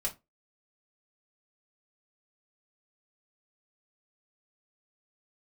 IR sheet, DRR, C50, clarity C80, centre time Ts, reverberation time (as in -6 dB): -3.5 dB, 16.0 dB, 25.5 dB, 11 ms, 0.20 s